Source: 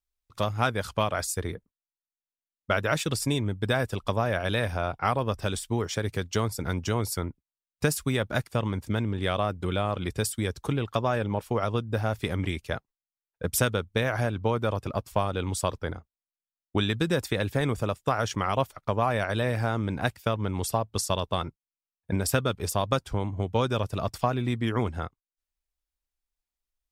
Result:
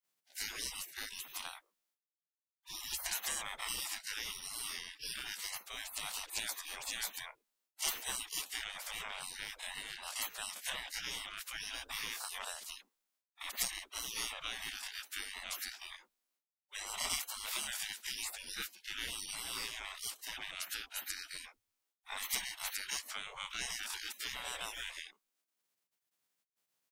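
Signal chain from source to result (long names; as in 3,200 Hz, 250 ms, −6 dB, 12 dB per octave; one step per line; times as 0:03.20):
every bin's largest magnitude spread in time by 60 ms
hum removal 77.4 Hz, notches 2
gate on every frequency bin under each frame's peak −30 dB weak
level +5.5 dB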